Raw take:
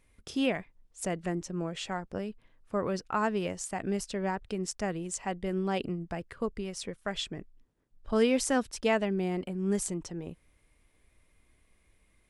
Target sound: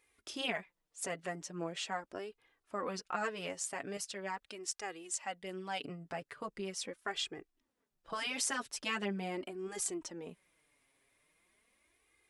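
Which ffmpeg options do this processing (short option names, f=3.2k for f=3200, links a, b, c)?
-af "asetnsamples=n=441:p=0,asendcmd='3.97 highpass f 1500;5.82 highpass f 490',highpass=f=650:p=1,afftfilt=real='re*lt(hypot(re,im),0.158)':imag='im*lt(hypot(re,im),0.158)':win_size=1024:overlap=0.75,flanger=delay=2.4:depth=5:regen=6:speed=0.41:shape=sinusoidal,volume=2.5dB"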